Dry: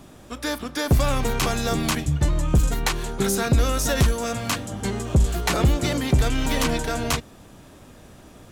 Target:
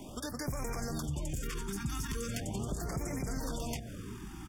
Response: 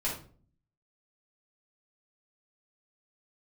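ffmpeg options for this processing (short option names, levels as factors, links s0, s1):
-filter_complex "[0:a]bandreject=f=60:t=h:w=6,bandreject=f=120:t=h:w=6,alimiter=limit=0.133:level=0:latency=1:release=85,acrossover=split=160|4400[s0][s1][s2];[s0]acompressor=threshold=0.0112:ratio=4[s3];[s1]acompressor=threshold=0.00891:ratio=4[s4];[s2]acompressor=threshold=0.00562:ratio=4[s5];[s3][s4][s5]amix=inputs=3:normalize=0,atempo=1.9,asuperstop=centerf=4000:order=8:qfactor=6.8,asplit=2[s6][s7];[s7]adelay=1516,volume=0.398,highshelf=f=4000:g=-34.1[s8];[s6][s8]amix=inputs=2:normalize=0,afftfilt=real='re*(1-between(b*sr/1024,530*pow(3600/530,0.5+0.5*sin(2*PI*0.4*pts/sr))/1.41,530*pow(3600/530,0.5+0.5*sin(2*PI*0.4*pts/sr))*1.41))':imag='im*(1-between(b*sr/1024,530*pow(3600/530,0.5+0.5*sin(2*PI*0.4*pts/sr))/1.41,530*pow(3600/530,0.5+0.5*sin(2*PI*0.4*pts/sr))*1.41))':win_size=1024:overlap=0.75,volume=1.12"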